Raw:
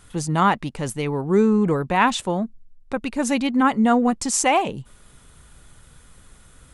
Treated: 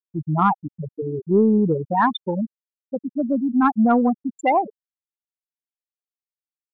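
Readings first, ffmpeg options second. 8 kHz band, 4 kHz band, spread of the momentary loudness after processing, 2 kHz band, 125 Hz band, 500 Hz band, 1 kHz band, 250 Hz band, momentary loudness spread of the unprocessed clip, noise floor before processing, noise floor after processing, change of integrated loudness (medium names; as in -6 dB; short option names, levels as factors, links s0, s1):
under -25 dB, -9.5 dB, 14 LU, -5.5 dB, -0.5 dB, 0.0 dB, 0.0 dB, +0.5 dB, 11 LU, -51 dBFS, under -85 dBFS, 0.0 dB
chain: -af "afftfilt=real='re*gte(hypot(re,im),0.398)':imag='im*gte(hypot(re,im),0.398)':win_size=1024:overlap=0.75,acontrast=23,volume=0.668"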